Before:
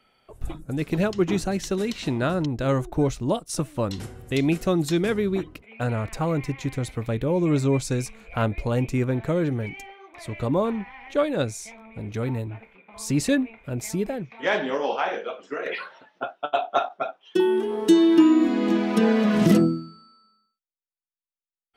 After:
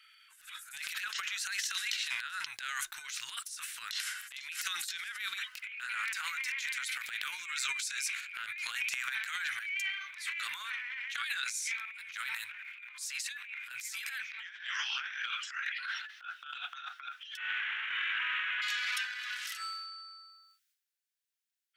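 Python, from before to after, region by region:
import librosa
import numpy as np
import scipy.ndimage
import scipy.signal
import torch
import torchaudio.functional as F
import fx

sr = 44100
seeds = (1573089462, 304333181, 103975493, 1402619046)

y = fx.chain(x, sr, fx.delta_mod(bps=16000, step_db=-26.5),
    fx.air_absorb(metres=230.0), at=(17.37, 18.62))
y = scipy.signal.sosfilt(scipy.signal.ellip(4, 1.0, 60, 1500.0, 'highpass', fs=sr, output='sos'), y)
y = fx.over_compress(y, sr, threshold_db=-40.0, ratio=-0.5)
y = fx.transient(y, sr, attack_db=-12, sustain_db=11)
y = y * 10.0 ** (4.0 / 20.0)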